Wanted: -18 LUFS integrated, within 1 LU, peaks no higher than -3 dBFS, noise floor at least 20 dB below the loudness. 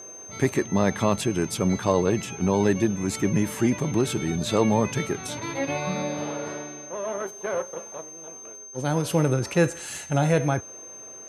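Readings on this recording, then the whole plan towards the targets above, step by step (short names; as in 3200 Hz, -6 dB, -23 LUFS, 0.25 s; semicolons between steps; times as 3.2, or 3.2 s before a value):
steady tone 6300 Hz; tone level -40 dBFS; loudness -25.5 LUFS; peak -8.0 dBFS; loudness target -18.0 LUFS
-> notch 6300 Hz, Q 30; gain +7.5 dB; limiter -3 dBFS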